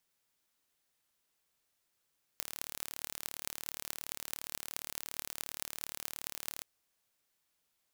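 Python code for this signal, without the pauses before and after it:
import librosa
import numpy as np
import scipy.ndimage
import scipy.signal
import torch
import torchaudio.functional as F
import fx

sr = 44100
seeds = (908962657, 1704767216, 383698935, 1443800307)

y = fx.impulse_train(sr, length_s=4.22, per_s=37.2, accent_every=8, level_db=-8.0)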